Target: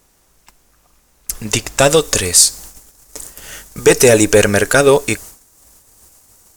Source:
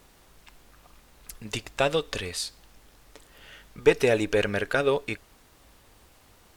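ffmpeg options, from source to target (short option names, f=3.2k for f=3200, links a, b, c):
-af "asetnsamples=n=441:p=0,asendcmd='1.79 highshelf g 12.5',highshelf=f=4.9k:t=q:w=1.5:g=6,agate=range=-16dB:threshold=-47dB:ratio=16:detection=peak,apsyclip=16dB,volume=-1.5dB"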